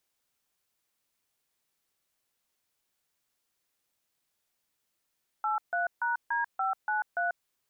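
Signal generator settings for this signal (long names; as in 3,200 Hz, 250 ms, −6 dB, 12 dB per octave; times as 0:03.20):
touch tones "83#D593", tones 141 ms, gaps 147 ms, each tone −29 dBFS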